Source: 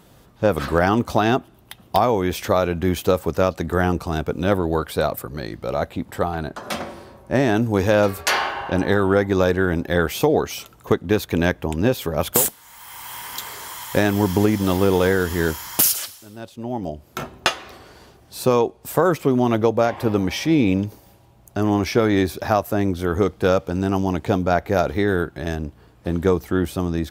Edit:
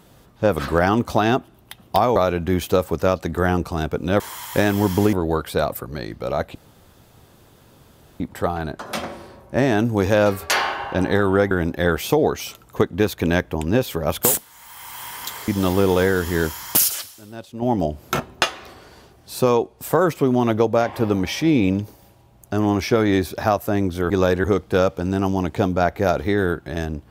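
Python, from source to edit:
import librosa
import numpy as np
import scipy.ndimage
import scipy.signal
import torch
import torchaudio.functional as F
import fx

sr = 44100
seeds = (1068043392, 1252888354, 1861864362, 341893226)

y = fx.edit(x, sr, fx.cut(start_s=2.16, length_s=0.35),
    fx.insert_room_tone(at_s=5.97, length_s=1.65),
    fx.move(start_s=9.28, length_s=0.34, to_s=23.14),
    fx.move(start_s=13.59, length_s=0.93, to_s=4.55),
    fx.clip_gain(start_s=16.66, length_s=0.58, db=7.0), tone=tone)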